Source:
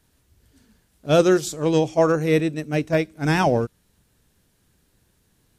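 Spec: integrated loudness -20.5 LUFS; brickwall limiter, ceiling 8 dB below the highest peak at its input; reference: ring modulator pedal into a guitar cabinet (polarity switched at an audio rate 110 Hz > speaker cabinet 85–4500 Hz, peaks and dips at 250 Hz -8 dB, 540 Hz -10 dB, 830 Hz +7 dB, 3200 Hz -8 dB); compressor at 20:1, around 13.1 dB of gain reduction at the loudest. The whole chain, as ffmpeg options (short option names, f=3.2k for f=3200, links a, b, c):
-af "acompressor=threshold=-25dB:ratio=20,alimiter=level_in=1dB:limit=-24dB:level=0:latency=1,volume=-1dB,aeval=exprs='val(0)*sgn(sin(2*PI*110*n/s))':c=same,highpass=85,equalizer=f=250:t=q:w=4:g=-8,equalizer=f=540:t=q:w=4:g=-10,equalizer=f=830:t=q:w=4:g=7,equalizer=f=3.2k:t=q:w=4:g=-8,lowpass=f=4.5k:w=0.5412,lowpass=f=4.5k:w=1.3066,volume=16dB"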